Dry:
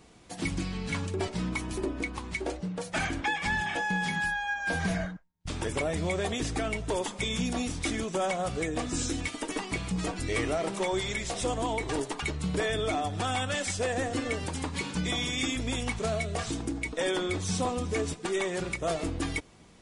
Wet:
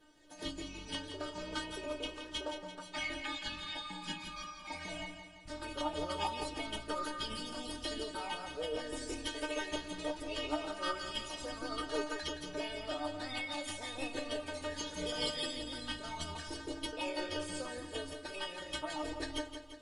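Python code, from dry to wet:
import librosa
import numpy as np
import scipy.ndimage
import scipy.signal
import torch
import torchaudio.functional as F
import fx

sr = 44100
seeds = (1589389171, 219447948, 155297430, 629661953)

y = fx.lowpass(x, sr, hz=3600.0, slope=6)
y = fx.peak_eq(y, sr, hz=2800.0, db=2.5, octaves=0.77)
y = fx.stiff_resonator(y, sr, f0_hz=300.0, decay_s=0.28, stiffness=0.002)
y = fx.formant_shift(y, sr, semitones=6)
y = fx.echo_feedback(y, sr, ms=170, feedback_pct=54, wet_db=-9.0)
y = y * librosa.db_to_amplitude(6.5)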